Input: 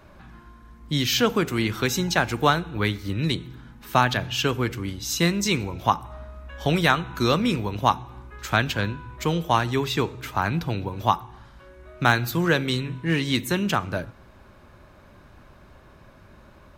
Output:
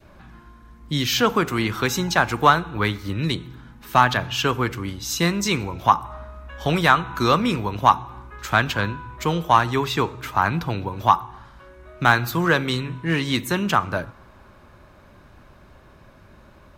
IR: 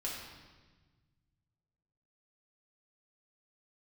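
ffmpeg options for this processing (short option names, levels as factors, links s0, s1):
-af "acontrast=45,adynamicequalizer=threshold=0.0282:dfrequency=1100:dqfactor=1.3:tfrequency=1100:tqfactor=1.3:attack=5:release=100:ratio=0.375:range=4:mode=boostabove:tftype=bell,volume=0.562"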